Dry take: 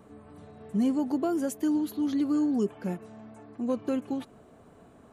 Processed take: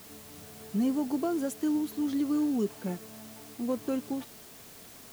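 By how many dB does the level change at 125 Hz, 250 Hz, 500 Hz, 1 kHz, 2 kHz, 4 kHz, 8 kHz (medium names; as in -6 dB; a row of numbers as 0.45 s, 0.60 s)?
-2.0 dB, -2.0 dB, -2.0 dB, -2.0 dB, 0.0 dB, +2.0 dB, +2.5 dB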